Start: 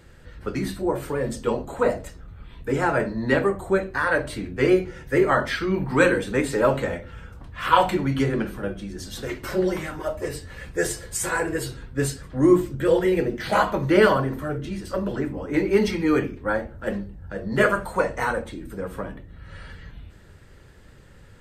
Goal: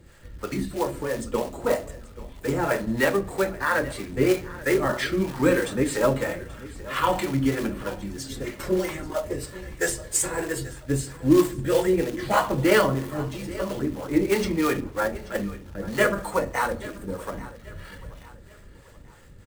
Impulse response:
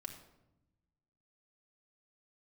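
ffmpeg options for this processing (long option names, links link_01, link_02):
-filter_complex "[0:a]equalizer=frequency=7800:width_type=o:width=0.52:gain=4.5,bandreject=frequency=1500:width=18,acrusher=bits=4:mode=log:mix=0:aa=0.000001,atempo=1.1,acrossover=split=470[link_01][link_02];[link_01]aeval=exprs='val(0)*(1-0.7/2+0.7/2*cos(2*PI*3.1*n/s))':channel_layout=same[link_03];[link_02]aeval=exprs='val(0)*(1-0.7/2-0.7/2*cos(2*PI*3.1*n/s))':channel_layout=same[link_04];[link_03][link_04]amix=inputs=2:normalize=0,aecho=1:1:833|1666|2499:0.126|0.0516|0.0212,asplit=2[link_05][link_06];[1:a]atrim=start_sample=2205[link_07];[link_06][link_07]afir=irnorm=-1:irlink=0,volume=-7.5dB[link_08];[link_05][link_08]amix=inputs=2:normalize=0"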